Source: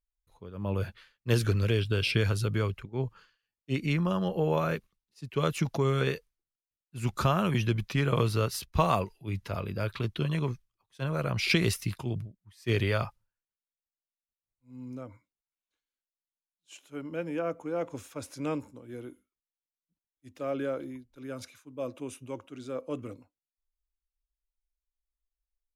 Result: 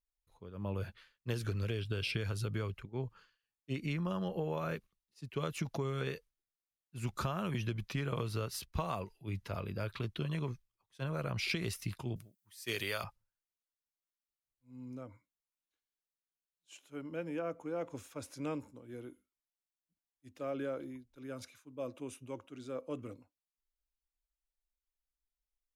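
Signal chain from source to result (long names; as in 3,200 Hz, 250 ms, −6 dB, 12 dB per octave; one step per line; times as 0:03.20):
0:12.16–0:13.04: RIAA equalisation recording
downward compressor 6 to 1, threshold −27 dBFS, peak gain reduction 9 dB
level −5 dB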